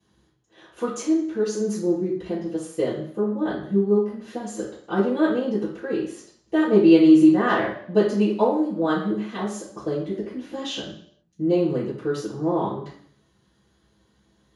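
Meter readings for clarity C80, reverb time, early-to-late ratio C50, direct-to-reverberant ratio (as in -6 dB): 8.5 dB, 0.60 s, 4.5 dB, -12.5 dB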